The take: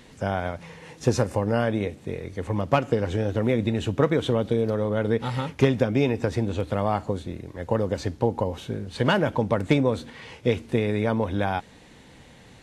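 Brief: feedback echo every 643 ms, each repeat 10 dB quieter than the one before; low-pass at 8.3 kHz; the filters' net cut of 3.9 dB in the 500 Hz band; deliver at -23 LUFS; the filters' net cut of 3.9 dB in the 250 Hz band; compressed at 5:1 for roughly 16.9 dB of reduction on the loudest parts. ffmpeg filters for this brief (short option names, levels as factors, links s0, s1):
-af "lowpass=8300,equalizer=f=250:t=o:g=-4,equalizer=f=500:t=o:g=-3.5,acompressor=threshold=0.0141:ratio=5,aecho=1:1:643|1286|1929|2572:0.316|0.101|0.0324|0.0104,volume=7.94"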